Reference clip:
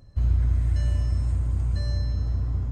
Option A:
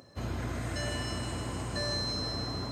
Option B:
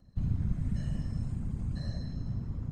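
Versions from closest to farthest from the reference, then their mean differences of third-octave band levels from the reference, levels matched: B, A; 3.5 dB, 12.0 dB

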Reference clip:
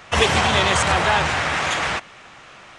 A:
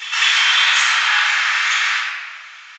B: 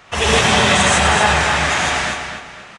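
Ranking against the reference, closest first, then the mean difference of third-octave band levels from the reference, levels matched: B, A; 5.0 dB, 15.0 dB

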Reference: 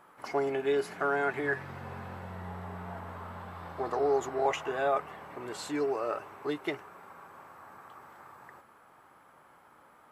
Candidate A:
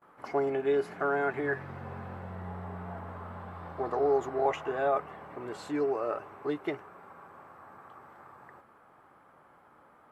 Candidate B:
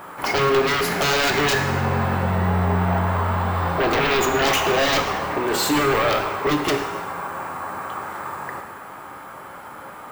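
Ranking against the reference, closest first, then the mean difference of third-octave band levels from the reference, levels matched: A, B; 3.0 dB, 8.5 dB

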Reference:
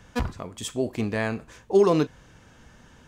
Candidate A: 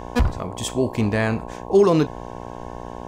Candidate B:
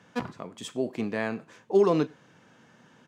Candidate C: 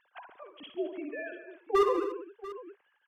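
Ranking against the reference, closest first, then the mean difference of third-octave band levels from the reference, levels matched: B, A, C; 2.0 dB, 4.5 dB, 11.0 dB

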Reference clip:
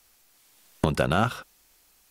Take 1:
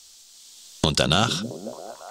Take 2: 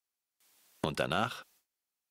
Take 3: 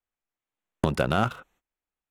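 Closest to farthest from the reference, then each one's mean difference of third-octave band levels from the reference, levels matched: 2, 3, 1; 2.0 dB, 4.0 dB, 5.5 dB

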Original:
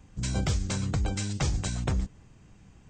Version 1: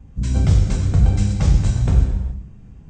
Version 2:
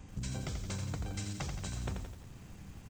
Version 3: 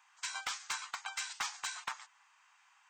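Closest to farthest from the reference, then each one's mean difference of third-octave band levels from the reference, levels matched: 1, 2, 3; 5.5 dB, 8.0 dB, 15.5 dB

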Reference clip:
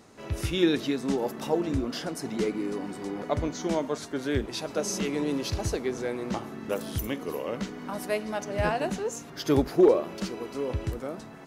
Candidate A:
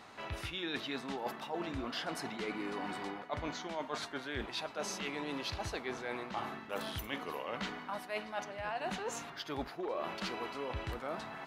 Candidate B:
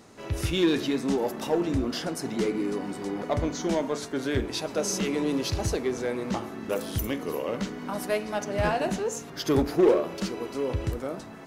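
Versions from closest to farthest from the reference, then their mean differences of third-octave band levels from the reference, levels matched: B, A; 1.5 dB, 5.5 dB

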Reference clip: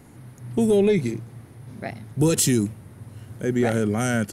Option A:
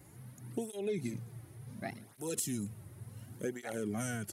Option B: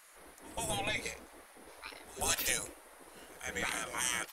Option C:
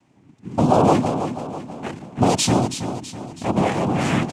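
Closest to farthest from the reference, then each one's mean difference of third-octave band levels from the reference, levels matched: A, C, B; 6.5 dB, 9.0 dB, 14.5 dB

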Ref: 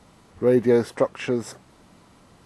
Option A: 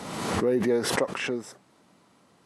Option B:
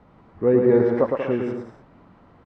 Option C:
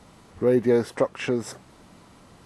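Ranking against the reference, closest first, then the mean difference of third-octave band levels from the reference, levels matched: C, B, A; 2.0 dB, 6.0 dB, 7.5 dB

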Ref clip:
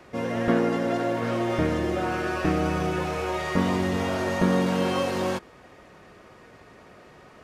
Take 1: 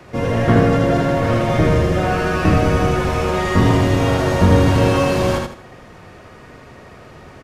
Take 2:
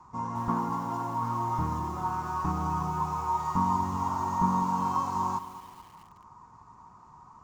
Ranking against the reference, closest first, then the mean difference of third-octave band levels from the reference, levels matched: 1, 2; 2.5 dB, 7.0 dB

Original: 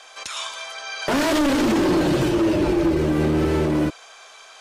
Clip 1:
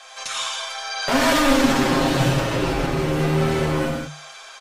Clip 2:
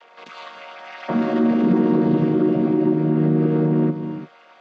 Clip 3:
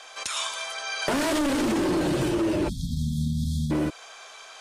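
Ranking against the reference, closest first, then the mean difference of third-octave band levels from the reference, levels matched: 1, 3, 2; 4.5 dB, 6.0 dB, 10.0 dB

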